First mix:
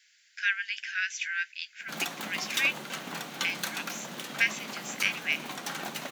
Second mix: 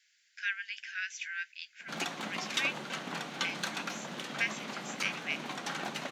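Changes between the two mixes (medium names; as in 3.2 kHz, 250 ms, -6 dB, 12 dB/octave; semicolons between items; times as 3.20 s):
speech -6.5 dB; background: add distance through air 62 m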